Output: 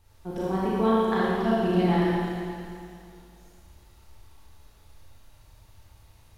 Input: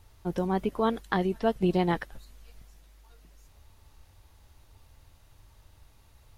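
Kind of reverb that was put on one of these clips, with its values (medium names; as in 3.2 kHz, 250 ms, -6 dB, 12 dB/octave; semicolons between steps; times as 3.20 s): Schroeder reverb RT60 2.4 s, combs from 28 ms, DRR -8 dB; trim -5.5 dB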